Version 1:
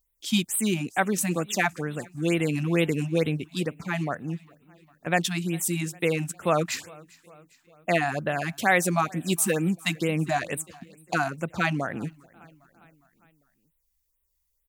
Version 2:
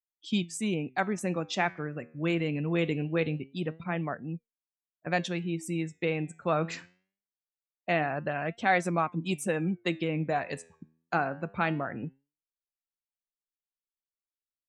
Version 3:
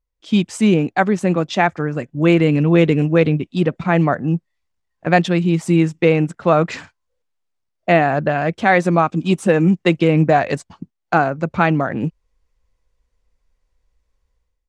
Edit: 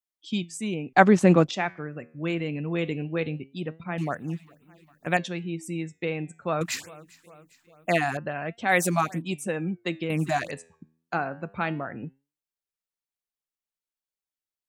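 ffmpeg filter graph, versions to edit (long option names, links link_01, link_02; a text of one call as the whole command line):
ffmpeg -i take0.wav -i take1.wav -i take2.wav -filter_complex "[0:a]asplit=4[link_01][link_02][link_03][link_04];[1:a]asplit=6[link_05][link_06][link_07][link_08][link_09][link_10];[link_05]atrim=end=0.932[link_11];[2:a]atrim=start=0.928:end=1.512[link_12];[link_06]atrim=start=1.508:end=3.982[link_13];[link_01]atrim=start=3.978:end=5.172[link_14];[link_07]atrim=start=5.168:end=6.612[link_15];[link_02]atrim=start=6.608:end=8.172[link_16];[link_08]atrim=start=8.168:end=8.74[link_17];[link_03]atrim=start=8.68:end=9.22[link_18];[link_09]atrim=start=9.16:end=10.102[link_19];[link_04]atrim=start=10.098:end=10.512[link_20];[link_10]atrim=start=10.508[link_21];[link_11][link_12]acrossfade=duration=0.004:curve1=hsin:curve2=hsin[link_22];[link_22][link_13]acrossfade=duration=0.004:curve1=hsin:curve2=hsin[link_23];[link_23][link_14]acrossfade=duration=0.004:curve1=hsin:curve2=hsin[link_24];[link_24][link_15]acrossfade=duration=0.004:curve1=hsin:curve2=hsin[link_25];[link_25][link_16]acrossfade=duration=0.004:curve1=hsin:curve2=hsin[link_26];[link_26][link_17]acrossfade=duration=0.004:curve1=hsin:curve2=hsin[link_27];[link_27][link_18]acrossfade=duration=0.06:curve1=tri:curve2=tri[link_28];[link_28][link_19]acrossfade=duration=0.06:curve1=tri:curve2=tri[link_29];[link_29][link_20]acrossfade=duration=0.004:curve1=hsin:curve2=hsin[link_30];[link_30][link_21]acrossfade=duration=0.004:curve1=hsin:curve2=hsin" out.wav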